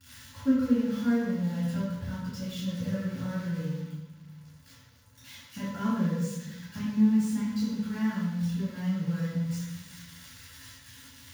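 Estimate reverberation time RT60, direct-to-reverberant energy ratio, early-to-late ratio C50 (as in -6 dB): 1.1 s, -10.5 dB, -1.0 dB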